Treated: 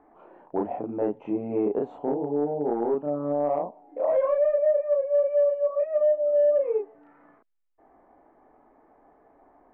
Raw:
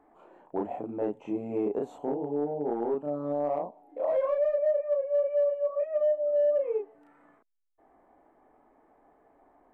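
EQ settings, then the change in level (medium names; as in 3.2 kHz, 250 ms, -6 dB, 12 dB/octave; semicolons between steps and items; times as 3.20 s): low-pass 2.3 kHz 12 dB/octave; +4.0 dB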